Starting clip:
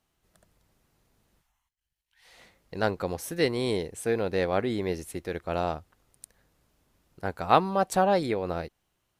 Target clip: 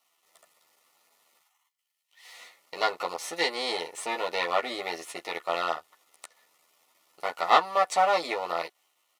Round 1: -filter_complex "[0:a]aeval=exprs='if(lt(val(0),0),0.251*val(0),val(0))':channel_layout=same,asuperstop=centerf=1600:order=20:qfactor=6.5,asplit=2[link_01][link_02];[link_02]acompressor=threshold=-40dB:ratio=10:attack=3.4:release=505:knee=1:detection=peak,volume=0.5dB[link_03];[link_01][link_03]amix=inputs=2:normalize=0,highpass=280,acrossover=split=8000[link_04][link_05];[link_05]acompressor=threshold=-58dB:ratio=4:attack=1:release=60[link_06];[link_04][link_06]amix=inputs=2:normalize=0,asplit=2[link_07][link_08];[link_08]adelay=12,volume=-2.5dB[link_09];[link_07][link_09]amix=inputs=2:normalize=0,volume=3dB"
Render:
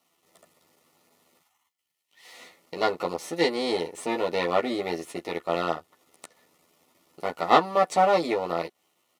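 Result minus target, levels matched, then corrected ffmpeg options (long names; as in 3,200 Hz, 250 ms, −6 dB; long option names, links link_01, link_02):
downward compressor: peak gain reduction +10 dB; 250 Hz band +9.5 dB
-filter_complex "[0:a]aeval=exprs='if(lt(val(0),0),0.251*val(0),val(0))':channel_layout=same,asuperstop=centerf=1600:order=20:qfactor=6.5,asplit=2[link_01][link_02];[link_02]acompressor=threshold=-29dB:ratio=10:attack=3.4:release=505:knee=1:detection=peak,volume=0.5dB[link_03];[link_01][link_03]amix=inputs=2:normalize=0,highpass=770,acrossover=split=8000[link_04][link_05];[link_05]acompressor=threshold=-58dB:ratio=4:attack=1:release=60[link_06];[link_04][link_06]amix=inputs=2:normalize=0,asplit=2[link_07][link_08];[link_08]adelay=12,volume=-2.5dB[link_09];[link_07][link_09]amix=inputs=2:normalize=0,volume=3dB"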